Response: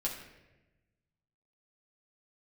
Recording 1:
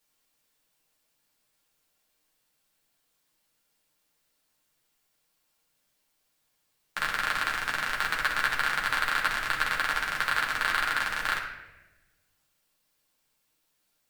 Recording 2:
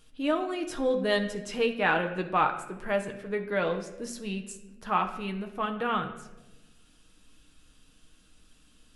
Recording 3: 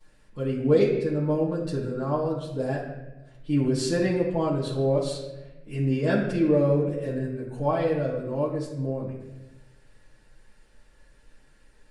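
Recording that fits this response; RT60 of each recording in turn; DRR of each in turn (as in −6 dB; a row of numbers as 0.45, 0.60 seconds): 1; 1.0, 1.1, 1.0 seconds; −3.5, 4.0, −13.0 decibels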